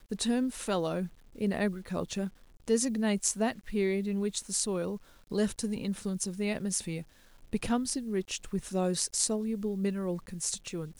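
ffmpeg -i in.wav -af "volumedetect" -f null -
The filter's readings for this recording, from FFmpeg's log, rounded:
mean_volume: -32.2 dB
max_volume: -8.8 dB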